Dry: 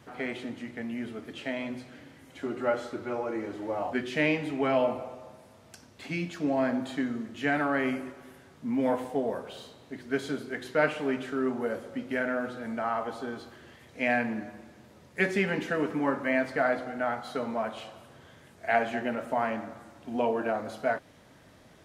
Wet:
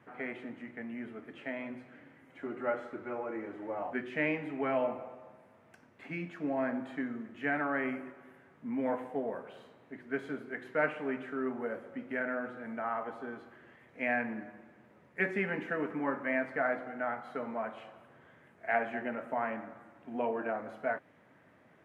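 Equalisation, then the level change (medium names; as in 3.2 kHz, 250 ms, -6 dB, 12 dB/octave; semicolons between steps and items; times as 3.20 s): high-pass 130 Hz 12 dB/octave; resonant high shelf 3 kHz -12.5 dB, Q 1.5; -6.0 dB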